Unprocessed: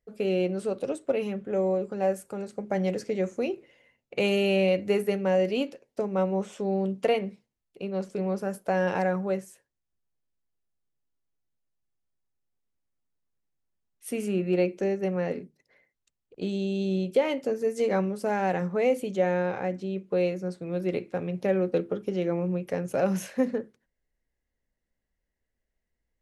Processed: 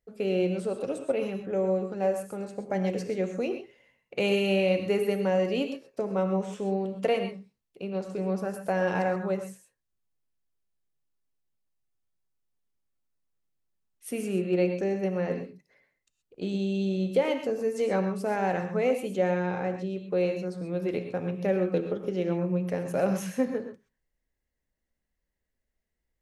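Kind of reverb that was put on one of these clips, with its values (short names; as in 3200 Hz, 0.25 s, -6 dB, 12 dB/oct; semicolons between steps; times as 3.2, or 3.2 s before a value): non-linear reverb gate 0.15 s rising, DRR 6.5 dB; gain -1.5 dB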